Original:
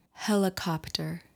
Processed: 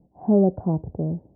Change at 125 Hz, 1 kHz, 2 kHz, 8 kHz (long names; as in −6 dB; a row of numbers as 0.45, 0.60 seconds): +8.5 dB, −0.5 dB, below −30 dB, below −40 dB